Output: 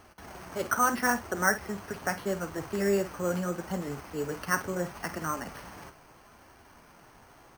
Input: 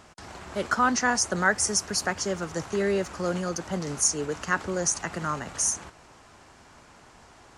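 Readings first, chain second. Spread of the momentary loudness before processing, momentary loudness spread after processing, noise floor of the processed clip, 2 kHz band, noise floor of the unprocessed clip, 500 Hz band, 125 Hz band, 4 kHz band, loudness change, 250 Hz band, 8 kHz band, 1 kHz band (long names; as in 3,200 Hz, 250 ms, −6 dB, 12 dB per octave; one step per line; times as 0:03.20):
9 LU, 16 LU, −56 dBFS, −3.0 dB, −53 dBFS, −2.0 dB, −2.5 dB, −10.5 dB, −4.0 dB, −2.5 dB, −12.5 dB, −2.5 dB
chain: flanger 0.76 Hz, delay 2.4 ms, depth 5.5 ms, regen −47%
double-tracking delay 50 ms −12.5 dB
bad sample-rate conversion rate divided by 6×, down filtered, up hold
level +1.5 dB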